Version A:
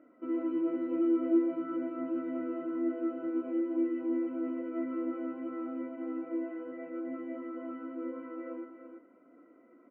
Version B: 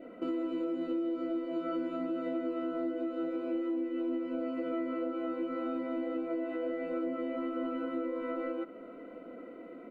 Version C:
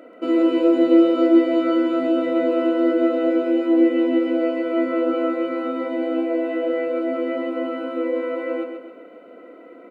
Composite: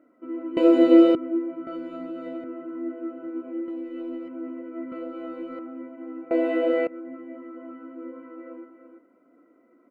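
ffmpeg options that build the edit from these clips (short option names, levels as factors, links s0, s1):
-filter_complex "[2:a]asplit=2[s0][s1];[1:a]asplit=3[s2][s3][s4];[0:a]asplit=6[s5][s6][s7][s8][s9][s10];[s5]atrim=end=0.572[s11];[s0]atrim=start=0.568:end=1.152[s12];[s6]atrim=start=1.148:end=1.672[s13];[s2]atrim=start=1.668:end=2.442[s14];[s7]atrim=start=2.438:end=3.682[s15];[s3]atrim=start=3.678:end=4.282[s16];[s8]atrim=start=4.278:end=4.922[s17];[s4]atrim=start=4.918:end=5.592[s18];[s9]atrim=start=5.588:end=6.312[s19];[s1]atrim=start=6.308:end=6.872[s20];[s10]atrim=start=6.868[s21];[s11][s12]acrossfade=d=0.004:c1=hsin:c2=hsin[s22];[s22][s13]acrossfade=d=0.004:c1=hsin:c2=hsin[s23];[s23][s14]acrossfade=d=0.004:c1=hsin:c2=hsin[s24];[s24][s15]acrossfade=d=0.004:c1=hsin:c2=hsin[s25];[s25][s16]acrossfade=d=0.004:c1=hsin:c2=hsin[s26];[s26][s17]acrossfade=d=0.004:c1=hsin:c2=hsin[s27];[s27][s18]acrossfade=d=0.004:c1=hsin:c2=hsin[s28];[s28][s19]acrossfade=d=0.004:c1=hsin:c2=hsin[s29];[s29][s20]acrossfade=d=0.004:c1=hsin:c2=hsin[s30];[s30][s21]acrossfade=d=0.004:c1=hsin:c2=hsin"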